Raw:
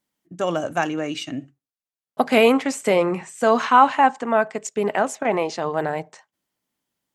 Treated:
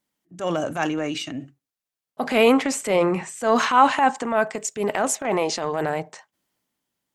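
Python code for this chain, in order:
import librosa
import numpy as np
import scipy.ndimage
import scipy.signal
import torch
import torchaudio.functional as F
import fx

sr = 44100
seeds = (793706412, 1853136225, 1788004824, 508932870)

y = fx.transient(x, sr, attack_db=-8, sustain_db=4)
y = fx.high_shelf(y, sr, hz=6300.0, db=9.0, at=(3.56, 5.98))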